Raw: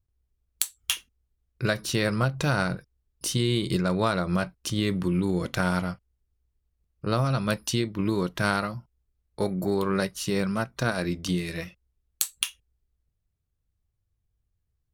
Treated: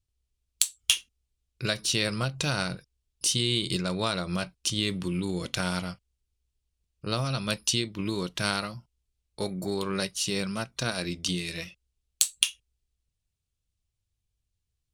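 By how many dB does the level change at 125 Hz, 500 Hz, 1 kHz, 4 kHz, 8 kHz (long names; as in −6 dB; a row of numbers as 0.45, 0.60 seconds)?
−5.0, −5.0, −5.0, +5.0, +4.5 decibels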